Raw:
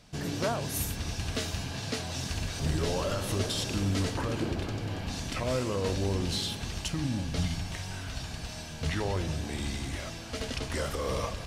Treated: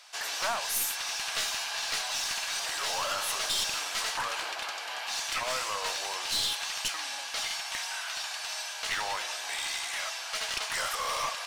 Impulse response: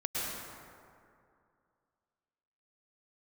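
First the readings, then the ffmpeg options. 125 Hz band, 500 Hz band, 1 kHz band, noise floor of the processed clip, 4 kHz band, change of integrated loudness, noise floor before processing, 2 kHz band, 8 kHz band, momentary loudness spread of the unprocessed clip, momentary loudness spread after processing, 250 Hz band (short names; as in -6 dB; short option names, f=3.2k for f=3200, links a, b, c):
-27.5 dB, -7.5 dB, +5.0 dB, -38 dBFS, +6.5 dB, +2.0 dB, -40 dBFS, +7.0 dB, +6.5 dB, 7 LU, 5 LU, -22.5 dB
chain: -filter_complex "[0:a]highpass=f=820:w=0.5412,highpass=f=820:w=1.3066,asplit=2[a][b];[b]alimiter=level_in=6dB:limit=-24dB:level=0:latency=1:release=12,volume=-6dB,volume=-2dB[c];[a][c]amix=inputs=2:normalize=0,aeval=exprs='clip(val(0),-1,0.0251)':c=same,volume=3dB"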